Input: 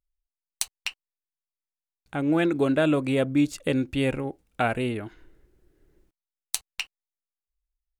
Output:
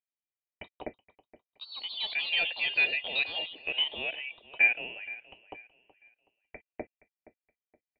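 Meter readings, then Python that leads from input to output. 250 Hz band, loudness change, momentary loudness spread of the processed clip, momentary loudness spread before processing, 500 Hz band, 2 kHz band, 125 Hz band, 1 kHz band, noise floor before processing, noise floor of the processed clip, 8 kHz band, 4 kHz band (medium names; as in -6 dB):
-27.5 dB, -2.0 dB, 22 LU, 13 LU, -17.0 dB, +5.5 dB, under -25 dB, -12.5 dB, under -85 dBFS, under -85 dBFS, under -40 dB, +6.5 dB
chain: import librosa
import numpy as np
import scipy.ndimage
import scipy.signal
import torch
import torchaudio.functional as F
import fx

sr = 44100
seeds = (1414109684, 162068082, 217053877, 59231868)

p1 = fx.vowel_filter(x, sr, vowel='a')
p2 = fx.freq_invert(p1, sr, carrier_hz=3100)
p3 = p2 + fx.echo_feedback(p2, sr, ms=471, feedback_pct=31, wet_db=-18.0, dry=0)
p4 = fx.echo_pitch(p3, sr, ms=128, semitones=4, count=2, db_per_echo=-6.0)
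y = p4 * 10.0 ** (6.0 / 20.0)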